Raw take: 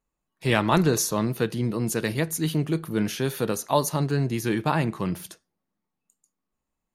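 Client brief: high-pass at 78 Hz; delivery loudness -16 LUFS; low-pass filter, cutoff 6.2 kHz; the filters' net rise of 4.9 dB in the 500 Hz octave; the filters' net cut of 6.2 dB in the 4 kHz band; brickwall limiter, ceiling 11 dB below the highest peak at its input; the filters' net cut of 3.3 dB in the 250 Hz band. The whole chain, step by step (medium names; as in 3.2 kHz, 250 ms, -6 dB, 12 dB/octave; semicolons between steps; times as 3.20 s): high-pass 78 Hz; low-pass 6.2 kHz; peaking EQ 250 Hz -8 dB; peaking EQ 500 Hz +8.5 dB; peaking EQ 4 kHz -7.5 dB; trim +12 dB; peak limiter -4 dBFS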